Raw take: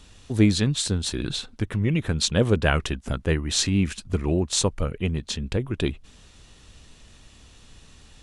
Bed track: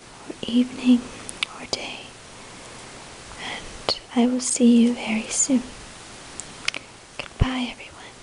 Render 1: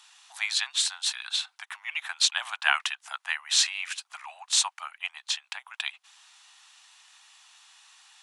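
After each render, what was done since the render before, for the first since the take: steep high-pass 770 Hz 72 dB/oct; dynamic EQ 2600 Hz, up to +4 dB, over -39 dBFS, Q 0.92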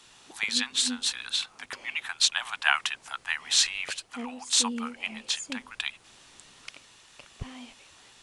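add bed track -18.5 dB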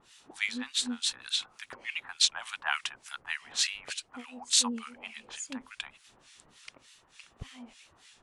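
wow and flutter 55 cents; harmonic tremolo 3.4 Hz, depth 100%, crossover 1400 Hz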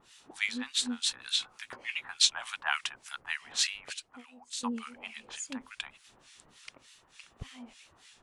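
1.24–2.55 doubler 16 ms -8.5 dB; 3.58–4.63 fade out, to -18 dB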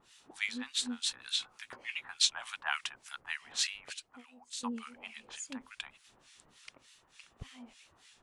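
gain -3.5 dB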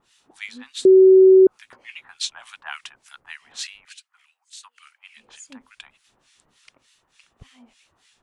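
0.85–1.47 bleep 378 Hz -7 dBFS; 3.85–5.17 HPF 1300 Hz 24 dB/oct

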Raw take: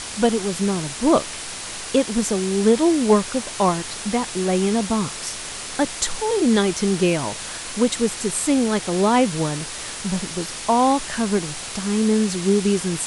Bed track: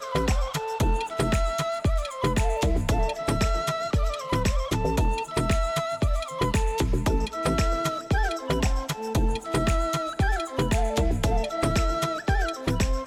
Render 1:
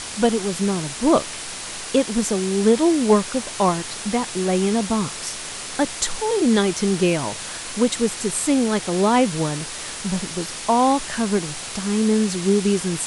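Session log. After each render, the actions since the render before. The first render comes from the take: de-hum 50 Hz, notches 2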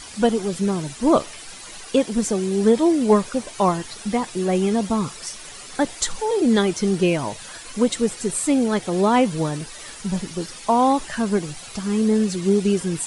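denoiser 11 dB, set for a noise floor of -32 dBFS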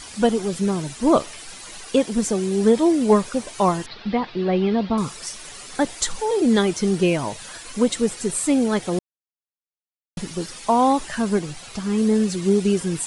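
3.86–4.98 steep low-pass 4600 Hz 48 dB/oct; 8.99–10.17 mute; 11.39–11.98 high shelf 8700 Hz -7.5 dB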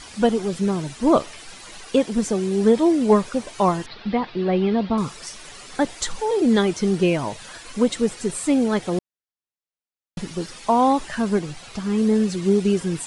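high shelf 8200 Hz -10 dB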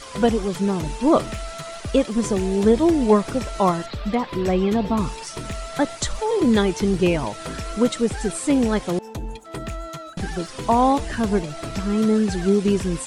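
add bed track -7.5 dB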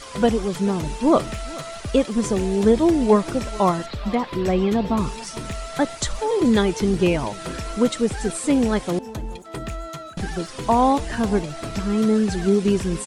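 echo 0.432 s -21.5 dB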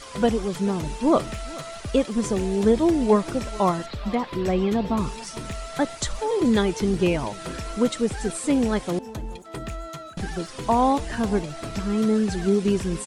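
gain -2.5 dB

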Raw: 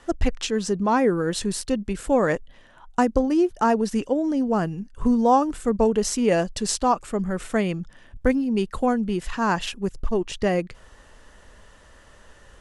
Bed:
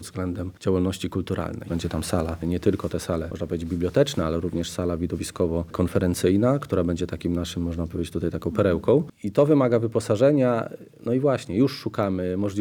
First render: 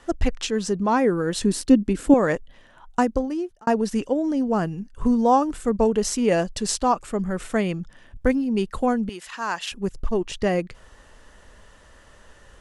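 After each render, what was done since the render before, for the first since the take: 1.44–2.14 bell 280 Hz +12.5 dB; 2.99–3.67 fade out; 9.09–9.72 HPF 1200 Hz 6 dB/oct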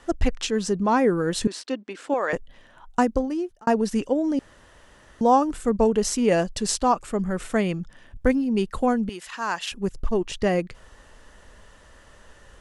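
1.47–2.33 BPF 660–5000 Hz; 4.39–5.21 room tone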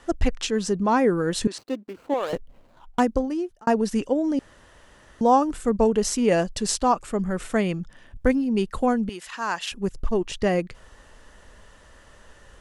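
1.58–3 median filter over 25 samples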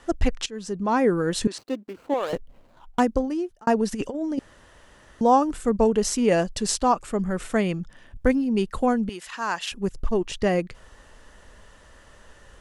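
0.46–1.07 fade in, from -16.5 dB; 3.92–4.38 negative-ratio compressor -26 dBFS, ratio -0.5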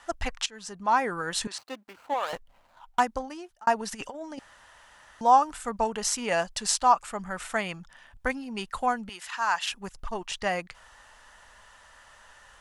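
resonant low shelf 590 Hz -12 dB, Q 1.5; notch 1100 Hz, Q 20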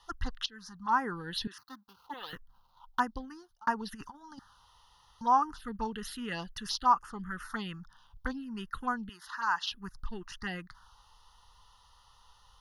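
fixed phaser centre 2300 Hz, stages 6; envelope phaser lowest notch 250 Hz, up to 3900 Hz, full sweep at -25 dBFS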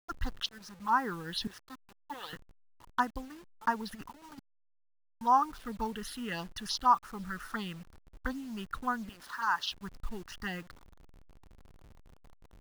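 level-crossing sampler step -49 dBFS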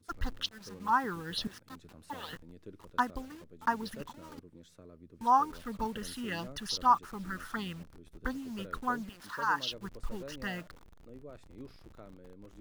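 add bed -28 dB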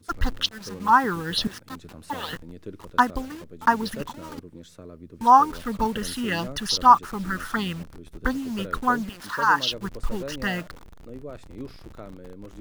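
gain +10.5 dB

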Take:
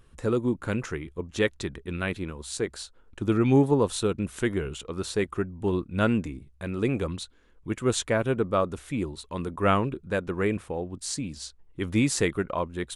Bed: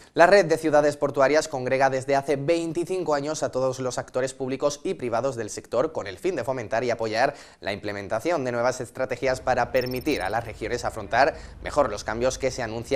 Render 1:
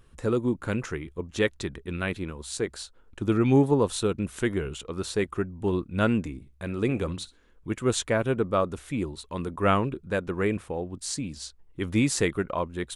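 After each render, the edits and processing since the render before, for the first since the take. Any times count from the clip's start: 6.34–7.72 flutter echo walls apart 10.6 m, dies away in 0.2 s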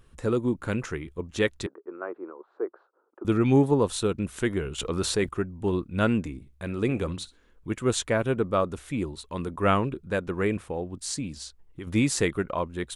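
1.66–3.25 Chebyshev band-pass 340–1300 Hz, order 3; 4.78–5.29 fast leveller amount 50%; 11.41–11.87 compressor, threshold -34 dBFS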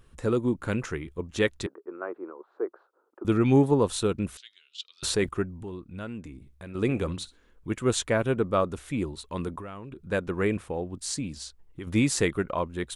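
4.37–5.03 Butterworth band-pass 4200 Hz, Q 2.2; 5.63–6.75 compressor 2:1, threshold -44 dBFS; 9.58–10.12 compressor 10:1, threshold -36 dBFS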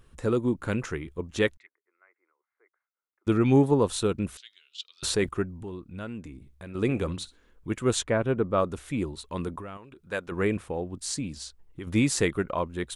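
1.57–3.27 band-pass 2100 Hz, Q 17; 8.03–8.58 LPF 2100 Hz 6 dB/oct; 9.77–10.32 low shelf 430 Hz -11.5 dB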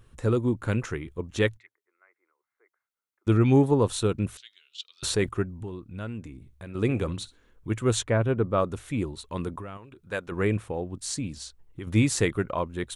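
bell 110 Hz +8.5 dB 0.27 oct; notch 4900 Hz, Q 22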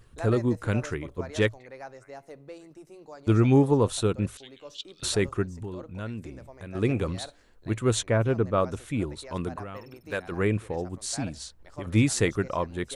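add bed -21.5 dB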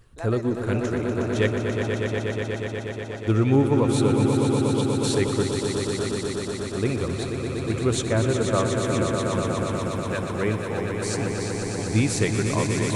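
swelling echo 0.121 s, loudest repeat 5, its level -7 dB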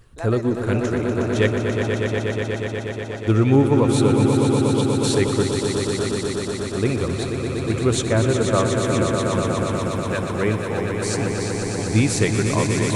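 gain +3.5 dB

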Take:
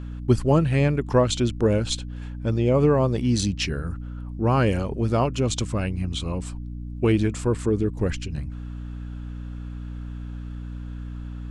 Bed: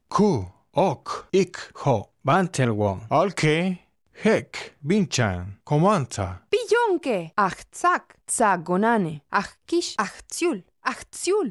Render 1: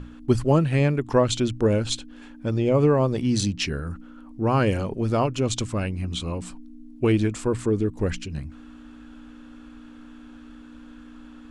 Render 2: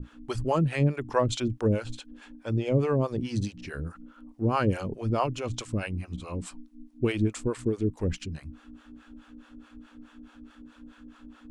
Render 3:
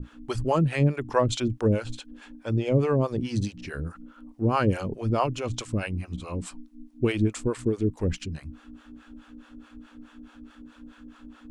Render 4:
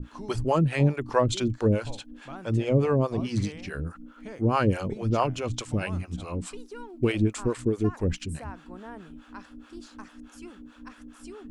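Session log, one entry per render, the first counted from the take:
notches 60/120/180 Hz
harmonic tremolo 4.7 Hz, depth 100%, crossover 500 Hz
gain +2 dB
add bed -23 dB

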